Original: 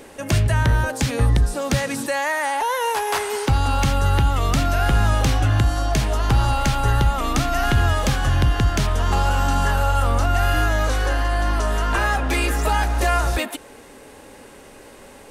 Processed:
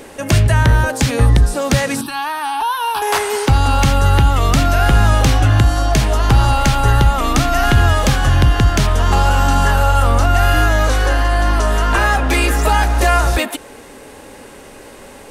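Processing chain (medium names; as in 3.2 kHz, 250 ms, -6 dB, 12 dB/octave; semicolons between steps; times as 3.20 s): 2.01–3.02 s: static phaser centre 2 kHz, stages 6; trim +6 dB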